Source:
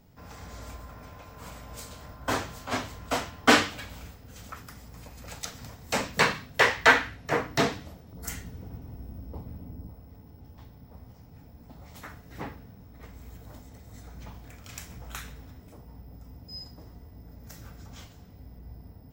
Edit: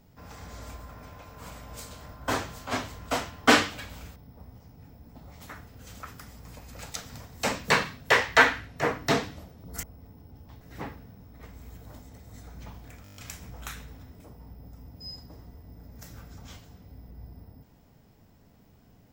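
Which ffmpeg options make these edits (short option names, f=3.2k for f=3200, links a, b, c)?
-filter_complex "[0:a]asplit=11[a][b][c][d][e][f][g][h][i][j][k];[a]atrim=end=4.162[l];[b]atrim=start=10.698:end=12.212[m];[c]atrim=start=4.158:end=8.322[n];[d]atrim=start=9.918:end=10.702[o];[e]atrim=start=12.208:end=14.662[p];[f]atrim=start=14.638:end=14.662[q];[g]atrim=start=14.638:end=14.662[r];[h]atrim=start=14.638:end=14.662[s];[i]atrim=start=14.638:end=14.662[t];[j]atrim=start=14.638:end=14.662[u];[k]atrim=start=14.638[v];[l][m]acrossfade=d=0.004:c1=hsin:c2=hsin[w];[w][n]acrossfade=d=0.004:c1=hsin:c2=hsin[x];[x][o]acrossfade=d=0.004:c1=hsin:c2=hsin[y];[y][p]acrossfade=d=0.004:c1=hsin:c2=hsin[z];[z][q]acrossfade=d=0.004:c1=hsin:c2=hsin[aa];[aa][r]acrossfade=d=0.004:c1=hsin:c2=hsin[ab];[ab][s]acrossfade=d=0.004:c1=hsin:c2=hsin[ac];[ac][t]acrossfade=d=0.004:c1=hsin:c2=hsin[ad];[ad][u]acrossfade=d=0.004:c1=hsin:c2=hsin[ae];[ae][v]acrossfade=d=0.004:c1=hsin:c2=hsin"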